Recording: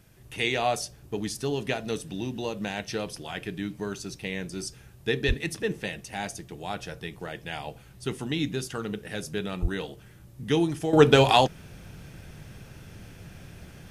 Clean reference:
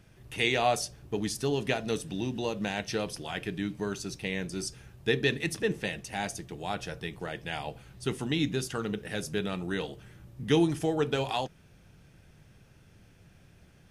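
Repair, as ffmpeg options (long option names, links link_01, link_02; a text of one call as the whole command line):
ffmpeg -i in.wav -filter_complex "[0:a]asplit=3[link_01][link_02][link_03];[link_01]afade=type=out:start_time=5.27:duration=0.02[link_04];[link_02]highpass=frequency=140:width=0.5412,highpass=frequency=140:width=1.3066,afade=type=in:start_time=5.27:duration=0.02,afade=type=out:start_time=5.39:duration=0.02[link_05];[link_03]afade=type=in:start_time=5.39:duration=0.02[link_06];[link_04][link_05][link_06]amix=inputs=3:normalize=0,asplit=3[link_07][link_08][link_09];[link_07]afade=type=out:start_time=9.61:duration=0.02[link_10];[link_08]highpass=frequency=140:width=0.5412,highpass=frequency=140:width=1.3066,afade=type=in:start_time=9.61:duration=0.02,afade=type=out:start_time=9.73:duration=0.02[link_11];[link_09]afade=type=in:start_time=9.73:duration=0.02[link_12];[link_10][link_11][link_12]amix=inputs=3:normalize=0,agate=range=-21dB:threshold=-41dB,asetnsamples=nb_out_samples=441:pad=0,asendcmd='10.93 volume volume -12dB',volume=0dB" out.wav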